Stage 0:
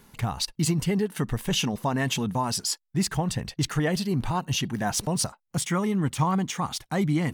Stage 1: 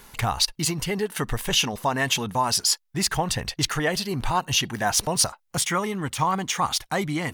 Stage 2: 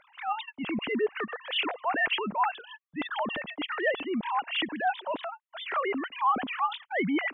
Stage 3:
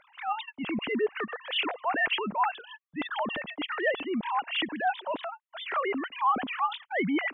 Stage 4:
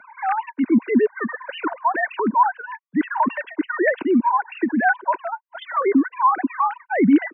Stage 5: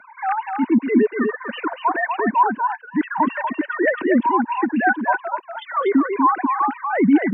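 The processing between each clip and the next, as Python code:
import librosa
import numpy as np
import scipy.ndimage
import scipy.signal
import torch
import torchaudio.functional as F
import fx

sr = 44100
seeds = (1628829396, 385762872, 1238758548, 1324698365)

y1 = fx.dynamic_eq(x, sr, hz=7900.0, q=6.3, threshold_db=-49.0, ratio=4.0, max_db=-5)
y1 = fx.rider(y1, sr, range_db=3, speed_s=0.5)
y1 = fx.peak_eq(y1, sr, hz=180.0, db=-11.0, octaves=2.2)
y1 = y1 * 10.0 ** (6.5 / 20.0)
y2 = fx.sine_speech(y1, sr)
y2 = fx.transient(y2, sr, attack_db=-8, sustain_db=1)
y2 = y2 * 10.0 ** (-2.5 / 20.0)
y3 = y2
y4 = fx.sine_speech(y3, sr)
y4 = fx.small_body(y4, sr, hz=(250.0, 960.0, 1500.0), ring_ms=20, db=14)
y4 = fx.band_squash(y4, sr, depth_pct=40)
y4 = y4 * 10.0 ** (1.5 / 20.0)
y5 = y4 + 10.0 ** (-5.5 / 20.0) * np.pad(y4, (int(241 * sr / 1000.0), 0))[:len(y4)]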